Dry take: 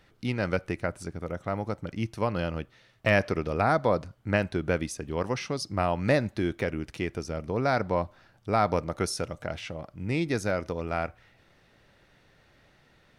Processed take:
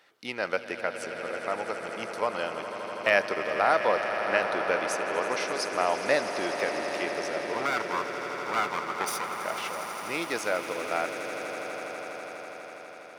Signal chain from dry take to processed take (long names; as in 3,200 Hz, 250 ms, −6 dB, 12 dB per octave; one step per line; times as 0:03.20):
0:07.53–0:09.38: lower of the sound and its delayed copy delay 0.84 ms
high-pass filter 510 Hz 12 dB per octave
echo that builds up and dies away 82 ms, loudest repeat 8, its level −13.5 dB
level +2 dB